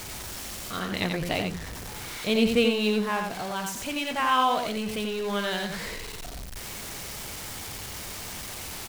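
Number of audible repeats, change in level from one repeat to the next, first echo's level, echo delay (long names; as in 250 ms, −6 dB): 1, repeats not evenly spaced, −5.0 dB, 89 ms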